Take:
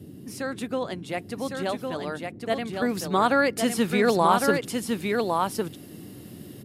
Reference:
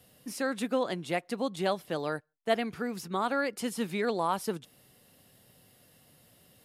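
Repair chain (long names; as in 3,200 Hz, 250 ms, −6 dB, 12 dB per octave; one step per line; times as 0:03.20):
noise reduction from a noise print 18 dB
echo removal 1,107 ms −4 dB
level correction −8.5 dB, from 0:02.82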